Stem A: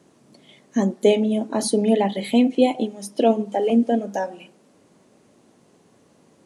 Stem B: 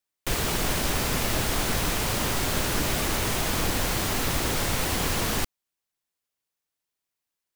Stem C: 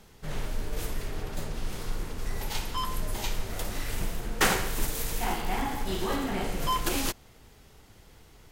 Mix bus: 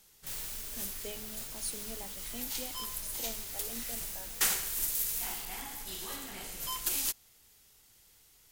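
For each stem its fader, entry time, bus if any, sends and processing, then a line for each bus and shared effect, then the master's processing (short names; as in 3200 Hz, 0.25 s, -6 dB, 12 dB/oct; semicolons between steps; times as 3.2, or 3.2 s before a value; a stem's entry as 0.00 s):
-10.5 dB, 0.00 s, no send, dry
-7.0 dB, 0.00 s, no send, auto duck -8 dB, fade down 0.85 s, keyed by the first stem
+1.5 dB, 0.00 s, no send, dry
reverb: off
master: pre-emphasis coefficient 0.9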